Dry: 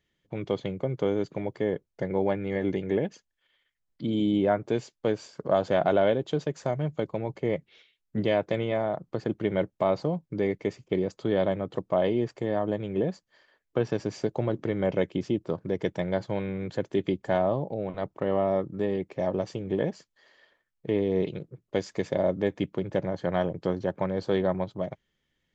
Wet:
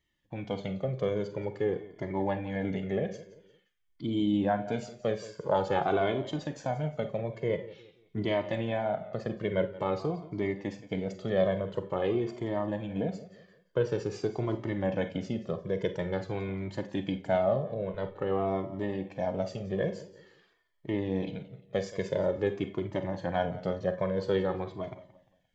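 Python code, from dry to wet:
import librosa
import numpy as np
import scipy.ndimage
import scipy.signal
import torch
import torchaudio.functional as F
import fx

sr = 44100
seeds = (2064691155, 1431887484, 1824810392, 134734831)

y = fx.peak_eq(x, sr, hz=850.0, db=13.0, octaves=0.21, at=(5.42, 5.87))
y = fx.echo_feedback(y, sr, ms=175, feedback_pct=35, wet_db=-17)
y = fx.rev_schroeder(y, sr, rt60_s=0.3, comb_ms=31, drr_db=9.0)
y = fx.comb_cascade(y, sr, direction='falling', hz=0.48)
y = y * librosa.db_to_amplitude(1.5)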